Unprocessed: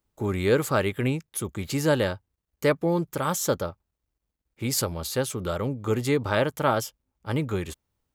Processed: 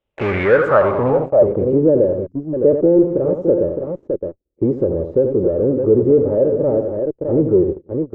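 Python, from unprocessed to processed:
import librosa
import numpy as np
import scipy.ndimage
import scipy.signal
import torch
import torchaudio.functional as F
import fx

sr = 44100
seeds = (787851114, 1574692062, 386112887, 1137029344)

p1 = fx.peak_eq(x, sr, hz=550.0, db=14.5, octaves=0.66)
p2 = fx.notch(p1, sr, hz=4400.0, q=5.1)
p3 = p2 + fx.echo_multitap(p2, sr, ms=(84, 178, 614), db=(-12.0, -19.5, -10.5), dry=0)
p4 = fx.spec_erase(p3, sr, start_s=2.27, length_s=0.27, low_hz=320.0, high_hz=4800.0)
p5 = fx.notch_comb(p4, sr, f0_hz=350.0, at=(6.08, 6.76))
p6 = fx.fuzz(p5, sr, gain_db=37.0, gate_db=-36.0)
p7 = p5 + (p6 * librosa.db_to_amplitude(-4.5))
p8 = fx.filter_sweep_lowpass(p7, sr, from_hz=3200.0, to_hz=370.0, start_s=0.0, end_s=1.84, q=3.6)
y = p8 * librosa.db_to_amplitude(-4.0)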